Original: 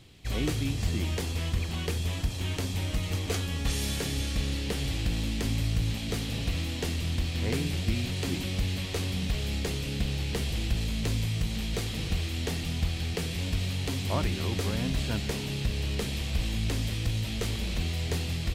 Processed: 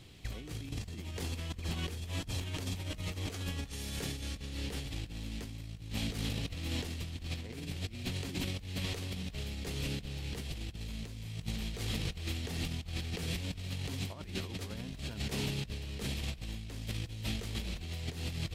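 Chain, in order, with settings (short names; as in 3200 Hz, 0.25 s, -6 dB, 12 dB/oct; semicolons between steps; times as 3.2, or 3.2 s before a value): negative-ratio compressor -33 dBFS, ratio -0.5; gain -4.5 dB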